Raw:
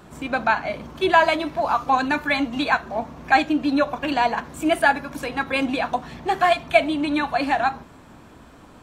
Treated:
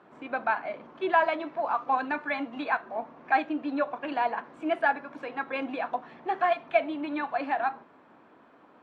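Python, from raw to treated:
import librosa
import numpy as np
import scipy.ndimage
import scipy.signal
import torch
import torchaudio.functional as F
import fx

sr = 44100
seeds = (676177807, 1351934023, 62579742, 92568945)

y = fx.bandpass_edges(x, sr, low_hz=310.0, high_hz=2100.0)
y = y * 10.0 ** (-6.5 / 20.0)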